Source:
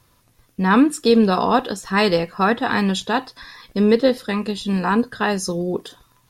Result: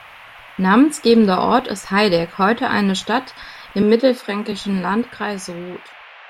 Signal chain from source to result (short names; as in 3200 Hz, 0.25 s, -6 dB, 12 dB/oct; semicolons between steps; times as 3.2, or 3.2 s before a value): ending faded out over 1.90 s; band noise 590–2800 Hz -43 dBFS; 3.82–4.52 Chebyshev high-pass 220 Hz, order 4; gain +2 dB